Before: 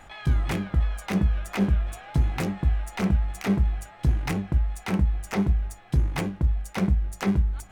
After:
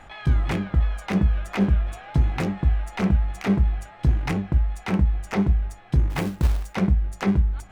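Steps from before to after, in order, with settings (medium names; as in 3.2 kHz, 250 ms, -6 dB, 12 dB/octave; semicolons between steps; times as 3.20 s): treble shelf 7.2 kHz -11.5 dB; 6.10–6.74 s: short-mantissa float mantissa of 2-bit; trim +2.5 dB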